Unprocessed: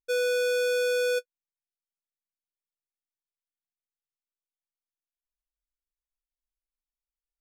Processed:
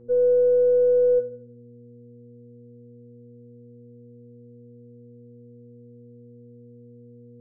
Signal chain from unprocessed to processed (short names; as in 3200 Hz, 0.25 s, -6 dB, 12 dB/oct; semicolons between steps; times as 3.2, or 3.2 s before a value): half-wave gain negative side -3 dB; elliptic low-pass 1100 Hz, stop band 50 dB; buzz 120 Hz, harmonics 4, -51 dBFS -2 dB/oct; reverb RT60 0.55 s, pre-delay 3 ms, DRR 2 dB